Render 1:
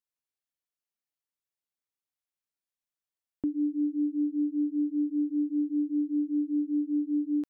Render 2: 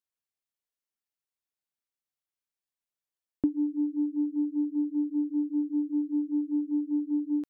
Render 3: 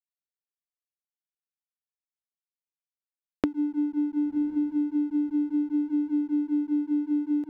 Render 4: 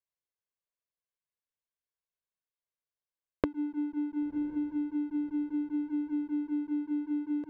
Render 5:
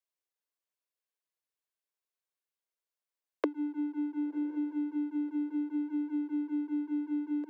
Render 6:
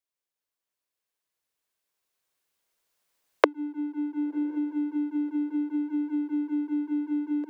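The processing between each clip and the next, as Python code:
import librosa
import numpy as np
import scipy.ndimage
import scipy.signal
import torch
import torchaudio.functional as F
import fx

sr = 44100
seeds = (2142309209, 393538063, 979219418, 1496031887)

y1 = fx.transient(x, sr, attack_db=8, sustain_db=1)
y1 = y1 * 10.0 ** (-2.5 / 20.0)
y2 = fx.echo_diffused(y1, sr, ms=1062, feedback_pct=53, wet_db=-11.0)
y2 = fx.backlash(y2, sr, play_db=-43.0)
y2 = fx.band_squash(y2, sr, depth_pct=100)
y3 = fx.lowpass(y2, sr, hz=1900.0, slope=6)
y3 = y3 + 0.58 * np.pad(y3, (int(1.9 * sr / 1000.0), 0))[:len(y3)]
y4 = scipy.signal.sosfilt(scipy.signal.butter(16, 280.0, 'highpass', fs=sr, output='sos'), y3)
y5 = fx.recorder_agc(y4, sr, target_db=-22.5, rise_db_per_s=5.4, max_gain_db=30)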